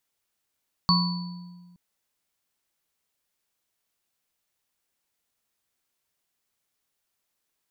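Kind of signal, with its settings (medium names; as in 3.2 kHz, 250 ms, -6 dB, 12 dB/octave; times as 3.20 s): sine partials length 0.87 s, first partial 177 Hz, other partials 987/1100/4470 Hz, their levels -8/-2.5/0 dB, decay 1.62 s, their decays 1.09/0.47/0.88 s, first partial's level -19 dB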